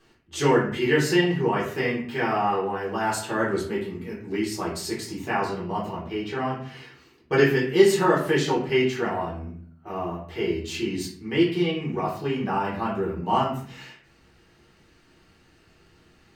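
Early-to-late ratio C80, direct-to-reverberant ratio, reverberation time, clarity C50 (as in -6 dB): 9.5 dB, -7.0 dB, 0.50 s, 5.5 dB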